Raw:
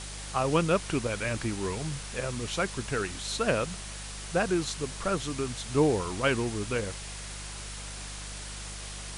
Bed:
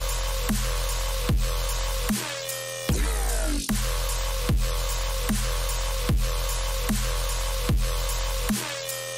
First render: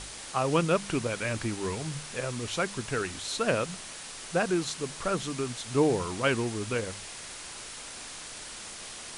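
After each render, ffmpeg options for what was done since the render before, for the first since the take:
-af "bandreject=f=50:t=h:w=4,bandreject=f=100:t=h:w=4,bandreject=f=150:t=h:w=4,bandreject=f=200:t=h:w=4"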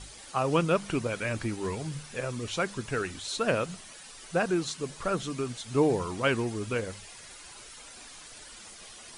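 -af "afftdn=nr=10:nf=-43"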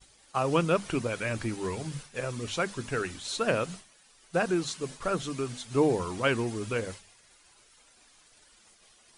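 -af "bandreject=f=50:t=h:w=6,bandreject=f=100:t=h:w=6,bandreject=f=150:t=h:w=6,bandreject=f=200:t=h:w=6,bandreject=f=250:t=h:w=6,agate=range=-33dB:threshold=-38dB:ratio=3:detection=peak"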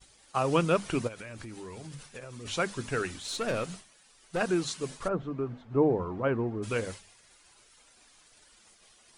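-filter_complex "[0:a]asplit=3[a][b][c];[a]afade=t=out:st=1.07:d=0.02[d];[b]acompressor=threshold=-39dB:ratio=10:attack=3.2:release=140:knee=1:detection=peak,afade=t=in:st=1.07:d=0.02,afade=t=out:st=2.45:d=0.02[e];[c]afade=t=in:st=2.45:d=0.02[f];[d][e][f]amix=inputs=3:normalize=0,asettb=1/sr,asplit=3[g][h][i];[g]atrim=end=3.184[j];[h]atrim=start=3.18:end=4.41,asetpts=PTS-STARTPTS,afade=t=in:d=0.004:c=qsin,afade=t=out:st=1.226:d=0.004:c=qsin,aeval=exprs='(tanh(17.8*val(0)+0.25)-tanh(0.25))/17.8':c=same[k];[i]atrim=start=4.406[l];[j][k]acrossfade=d=0.004:c1=hsin:c2=qsin[m];[m][l]acrossfade=d=0.004:c1=qsin:c2=hsin,asplit=3[n][o][p];[n]afade=t=out:st=5.07:d=0.02[q];[o]lowpass=1.1k,afade=t=in:st=5.07:d=0.02,afade=t=out:st=6.62:d=0.02[r];[p]afade=t=in:st=6.62:d=0.02[s];[q][r][s]amix=inputs=3:normalize=0"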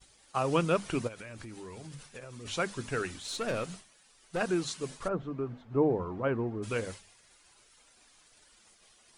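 -af "volume=-2dB"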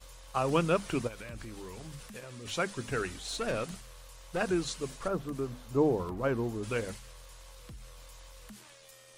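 -filter_complex "[1:a]volume=-24.5dB[a];[0:a][a]amix=inputs=2:normalize=0"

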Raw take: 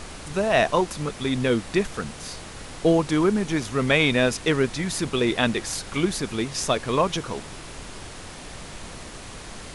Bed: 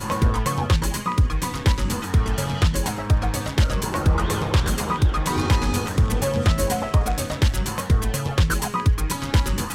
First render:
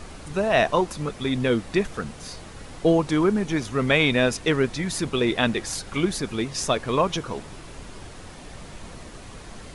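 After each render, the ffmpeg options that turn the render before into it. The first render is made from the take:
-af "afftdn=nr=6:nf=-40"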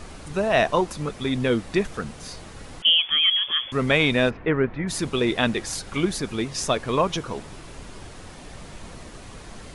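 -filter_complex "[0:a]asettb=1/sr,asplit=3[a][b][c];[a]atrim=end=2.824[d];[b]atrim=start=2.82:end=3.72,asetpts=PTS-STARTPTS,afade=t=in:d=0.004:c=qsin,afade=t=out:st=0.896:d=0.004:c=qsin,lowpass=f=3k:t=q:w=0.5098,lowpass=f=3k:t=q:w=0.6013,lowpass=f=3k:t=q:w=0.9,lowpass=f=3k:t=q:w=2.563,afreqshift=-3500[e];[c]atrim=start=3.716[f];[d][e]acrossfade=d=0.004:c1=hsin:c2=qsin[g];[g][f]acrossfade=d=0.004:c1=qsin:c2=hsin,asplit=3[h][i][j];[h]afade=t=out:st=4.29:d=0.02[k];[i]lowpass=f=2.2k:w=0.5412,lowpass=f=2.2k:w=1.3066,afade=t=in:st=4.29:d=0.02,afade=t=out:st=4.87:d=0.02[l];[j]afade=t=in:st=4.87:d=0.02[m];[k][l][m]amix=inputs=3:normalize=0"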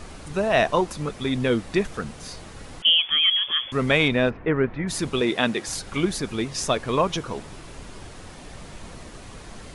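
-filter_complex "[0:a]asettb=1/sr,asplit=3[a][b][c];[a]atrim=end=4.084[d];[b]atrim=start=4.08:end=4.56,asetpts=PTS-STARTPTS,afade=t=in:d=0.004:c=qsin,afade=t=out:st=0.476:d=0.004:c=qsin,highshelf=f=4.3k:g=-12[e];[c]atrim=start=4.556[f];[d][e]acrossfade=d=0.004:c1=hsin:c2=qsin[g];[g][f]acrossfade=d=0.004:c1=qsin:c2=hsin,asettb=1/sr,asplit=3[h][i][j];[h]atrim=end=5.214[k];[i]atrim=start=5.21:end=5.67,asetpts=PTS-STARTPTS,afade=t=in:d=0.004:c=qsin,afade=t=out:st=0.456:d=0.004:c=qsin,highpass=150[l];[j]atrim=start=5.666[m];[k][l]acrossfade=d=0.004:c1=hsin:c2=qsin[n];[n][m]acrossfade=d=0.004:c1=qsin:c2=hsin"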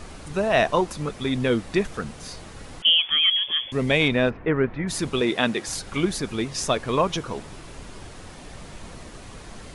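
-filter_complex "[0:a]asettb=1/sr,asplit=3[a][b][c];[a]atrim=end=3.314[d];[b]atrim=start=3.31:end=4.02,asetpts=PTS-STARTPTS,afade=t=in:d=0.004:c=qsin,afade=t=out:st=0.706:d=0.004:c=qsin,equalizer=f=1.3k:t=o:w=0.58:g=-10[e];[c]atrim=start=4.016[f];[d][e]acrossfade=d=0.004:c1=hsin:c2=qsin[g];[g][f]acrossfade=d=0.004:c1=qsin:c2=hsin"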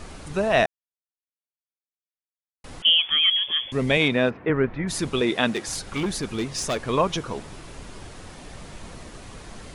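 -filter_complex "[0:a]asettb=1/sr,asplit=3[a][b][c];[a]atrim=end=3.974[d];[b]atrim=start=3.97:end=4.5,asetpts=PTS-STARTPTS,afade=t=in:d=0.004:c=qsin,afade=t=out:st=0.526:d=0.004:c=qsin,highpass=120[e];[c]atrim=start=4.496[f];[d][e]acrossfade=d=0.004:c1=hsin:c2=qsin[g];[g][f]acrossfade=d=0.004:c1=qsin:c2=hsin,asettb=1/sr,asplit=3[h][i][j];[h]atrim=end=5.504[k];[i]atrim=start=5.5:end=6.83,asetpts=PTS-STARTPTS,afade=t=in:d=0.004:c=qsin,afade=t=out:st=1.326:d=0.004:c=qsin,asoftclip=type=hard:threshold=-21dB[l];[j]atrim=start=6.826[m];[k][l]acrossfade=d=0.004:c1=hsin:c2=qsin[n];[n][m]acrossfade=d=0.004:c1=qsin:c2=hsin,asplit=3[o][p][q];[o]atrim=end=0.66,asetpts=PTS-STARTPTS,afade=t=out:st=0.656:d=0.004:c=hsin[r];[p]atrim=start=0.66:end=2.64,asetpts=PTS-STARTPTS,volume=0[s];[q]atrim=start=2.64,asetpts=PTS-STARTPTS,afade=t=in:d=0.004:c=hsin[t];[r][s][t]concat=n=3:v=0:a=1"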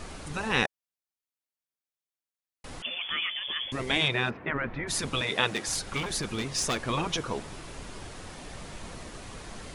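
-af "lowshelf=f=390:g=-2.5,afftfilt=real='re*lt(hypot(re,im),0.316)':imag='im*lt(hypot(re,im),0.316)':win_size=1024:overlap=0.75"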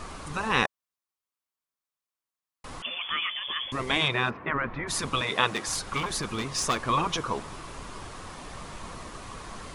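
-af "equalizer=f=1.1k:t=o:w=0.51:g=9"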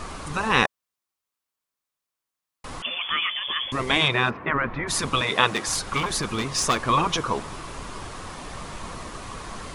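-af "volume=4.5dB"

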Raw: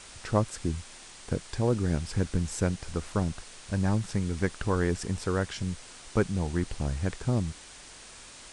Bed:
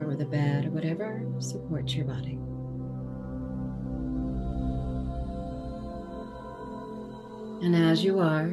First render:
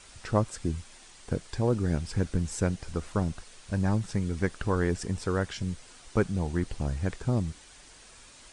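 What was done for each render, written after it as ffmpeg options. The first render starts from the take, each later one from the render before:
-af "afftdn=nr=6:nf=-48"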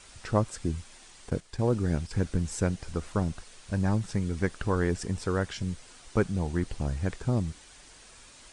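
-filter_complex "[0:a]asettb=1/sr,asplit=3[a][b][c];[a]atrim=end=1.304[d];[b]atrim=start=1.3:end=2.11,asetpts=PTS-STARTPTS,afade=t=in:d=0.004:c=qsin,afade=t=out:st=0.806:d=0.004:c=qsin,agate=range=-8dB:threshold=-37dB:ratio=16:release=100:detection=peak[e];[c]atrim=start=2.106[f];[d][e]acrossfade=d=0.004:c1=hsin:c2=qsin[g];[g][f]acrossfade=d=0.004:c1=qsin:c2=hsin"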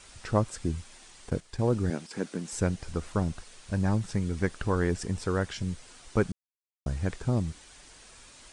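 -filter_complex "[0:a]asettb=1/sr,asplit=3[a][b][c];[a]atrim=end=1.904[d];[b]atrim=start=1.9:end=2.53,asetpts=PTS-STARTPTS,afade=t=in:d=0.004:c=qsin,afade=t=out:st=0.626:d=0.004:c=qsin,highpass=f=200:w=0.5412,highpass=f=200:w=1.3066[e];[c]atrim=start=2.526[f];[d][e]acrossfade=d=0.004:c1=hsin:c2=qsin[g];[g][f]acrossfade=d=0.004:c1=qsin:c2=hsin,asplit=3[h][i][j];[h]atrim=end=6.32,asetpts=PTS-STARTPTS,afade=t=out:st=6.316:d=0.004:c=hsin[k];[i]atrim=start=6.32:end=6.86,asetpts=PTS-STARTPTS,volume=0[l];[j]atrim=start=6.86,asetpts=PTS-STARTPTS,afade=t=in:d=0.004:c=hsin[m];[k][l][m]concat=n=3:v=0:a=1"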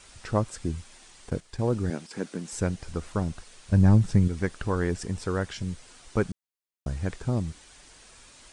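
-filter_complex "[0:a]asettb=1/sr,asplit=3[a][b][c];[a]atrim=end=3.724[d];[b]atrim=start=3.72:end=4.28,asetpts=PTS-STARTPTS,afade=t=in:d=0.004:c=qsin,afade=t=out:st=0.556:d=0.004:c=qsin,lowshelf=f=300:g=11[e];[c]atrim=start=4.276[f];[d][e]acrossfade=d=0.004:c1=hsin:c2=qsin[g];[g][f]acrossfade=d=0.004:c1=qsin:c2=hsin"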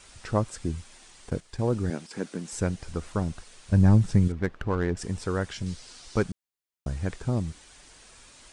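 -filter_complex "[0:a]asettb=1/sr,asplit=3[a][b][c];[a]atrim=end=4.324[d];[b]atrim=start=4.32:end=4.97,asetpts=PTS-STARTPTS,afade=t=in:d=0.004:c=qsin,afade=t=out:st=0.646:d=0.004:c=qsin,adynamicsmooth=sensitivity=4.5:basefreq=1.8k[e];[c]atrim=start=4.966[f];[d][e]acrossfade=d=0.004:c1=hsin:c2=qsin[g];[g][f]acrossfade=d=0.004:c1=qsin:c2=hsin,asettb=1/sr,asplit=3[h][i][j];[h]atrim=end=5.664[k];[i]atrim=start=5.66:end=6.23,asetpts=PTS-STARTPTS,afade=t=in:d=0.004:c=qsin,afade=t=out:st=0.566:d=0.004:c=qsin,equalizer=f=4.8k:w=1.4:g=9[l];[j]atrim=start=6.226[m];[k][l]acrossfade=d=0.004:c1=hsin:c2=qsin[n];[n][m]acrossfade=d=0.004:c1=qsin:c2=hsin"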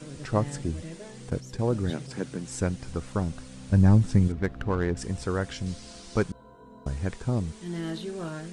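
-filter_complex "[1:a]volume=-11dB[a];[0:a][a]amix=inputs=2:normalize=0"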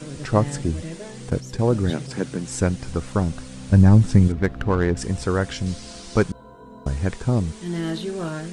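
-af "volume=6.5dB,alimiter=limit=-3dB:level=0:latency=1"

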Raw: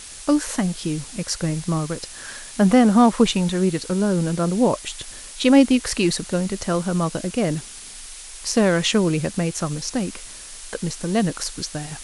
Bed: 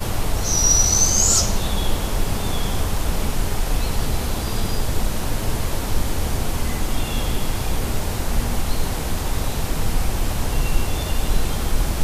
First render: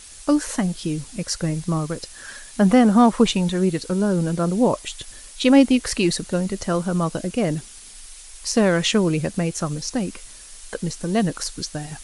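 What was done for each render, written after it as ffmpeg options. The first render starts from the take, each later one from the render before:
-af "afftdn=nr=6:nf=-39"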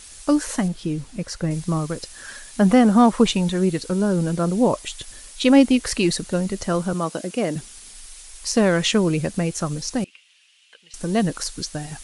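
-filter_complex "[0:a]asettb=1/sr,asplit=3[a][b][c];[a]atrim=end=0.684[d];[b]atrim=start=0.68:end=1.51,asetpts=PTS-STARTPTS,afade=t=in:d=0.004:c=qsin,afade=t=out:st=0.826:d=0.004:c=qsin,highshelf=f=3.5k:g=-9.5[e];[c]atrim=start=1.506[f];[d][e]acrossfade=d=0.004:c1=hsin:c2=qsin[g];[g][f]acrossfade=d=0.004:c1=qsin:c2=hsin,asettb=1/sr,asplit=3[h][i][j];[h]atrim=end=6.934[k];[i]atrim=start=6.93:end=7.56,asetpts=PTS-STARTPTS,afade=t=in:d=0.004:c=qsin,afade=t=out:st=0.626:d=0.004:c=qsin,highpass=220[l];[j]atrim=start=7.556[m];[k][l]acrossfade=d=0.004:c1=hsin:c2=qsin[n];[n][m]acrossfade=d=0.004:c1=qsin:c2=hsin,asettb=1/sr,asplit=3[o][p][q];[o]atrim=end=10.044[r];[p]atrim=start=10.04:end=10.94,asetpts=PTS-STARTPTS,afade=t=in:d=0.004:c=qsin,afade=t=out:st=0.896:d=0.004:c=qsin,bandpass=f=2.8k:t=q:w=4.6[s];[q]atrim=start=10.936[t];[r][s]acrossfade=d=0.004:c1=hsin:c2=qsin[u];[u][t]acrossfade=d=0.004:c1=qsin:c2=hsin"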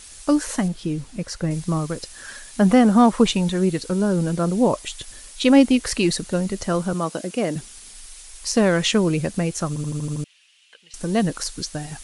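-filter_complex "[0:a]asplit=8[a][b][c][d][e][f][g][h];[a]atrim=end=9.762[i];[b]atrim=start=9.678:end=9.762[j];[c]atrim=start=9.678:end=9.762[k];[d]atrim=start=9.678:end=9.762[l];[e]atrim=start=9.678:end=9.762[m];[f]atrim=start=9.678:end=9.762[n];[g]atrim=start=9.678:end=9.762[o];[h]atrim=start=10.238[p];[i][j]acrossfade=d=0.004:c1=hsin:c2=hsin[q];[q][k]acrossfade=d=0.004:c1=hsin:c2=hsin[r];[r][l]acrossfade=d=0.004:c1=hsin:c2=hsin[s];[s][m]acrossfade=d=0.004:c1=hsin:c2=hsin[t];[t][n]acrossfade=d=0.004:c1=hsin:c2=hsin[u];[u][o]acrossfade=d=0.004:c1=hsin:c2=hsin[v];[v][p]acrossfade=d=0.004:c1=hsin:c2=hsin"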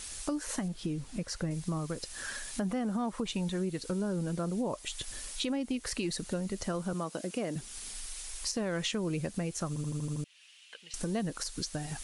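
-af "alimiter=limit=-12.5dB:level=0:latency=1:release=209,acompressor=threshold=-36dB:ratio=2.5"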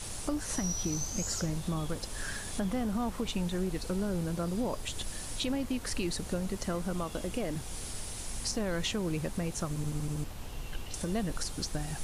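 -filter_complex "[1:a]volume=-20dB[a];[0:a][a]amix=inputs=2:normalize=0"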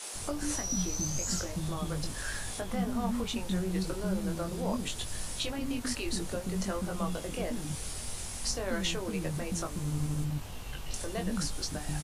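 -filter_complex "[0:a]asplit=2[a][b];[b]adelay=21,volume=-5dB[c];[a][c]amix=inputs=2:normalize=0,acrossover=split=310[d][e];[d]adelay=140[f];[f][e]amix=inputs=2:normalize=0"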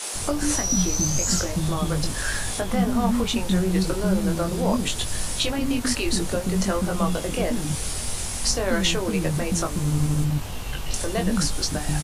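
-af "volume=10dB"

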